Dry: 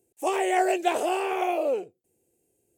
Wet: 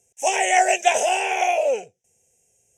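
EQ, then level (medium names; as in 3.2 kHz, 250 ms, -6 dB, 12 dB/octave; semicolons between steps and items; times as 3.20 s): resonant low-pass 5.9 kHz, resonance Q 5.5; treble shelf 3 kHz +11 dB; static phaser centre 1.2 kHz, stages 6; +6.0 dB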